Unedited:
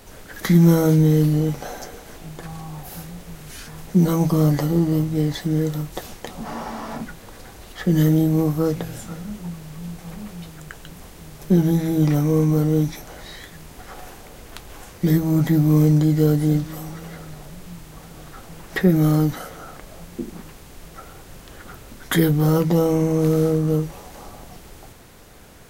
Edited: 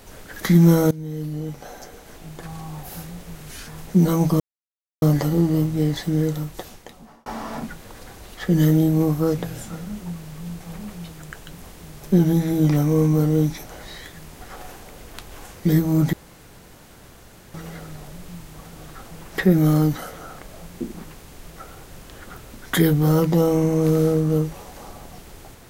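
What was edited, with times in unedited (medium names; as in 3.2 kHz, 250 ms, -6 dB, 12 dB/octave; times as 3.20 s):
0.91–2.67 s: fade in, from -21.5 dB
4.40 s: insert silence 0.62 s
5.66–6.64 s: fade out
15.51–16.92 s: room tone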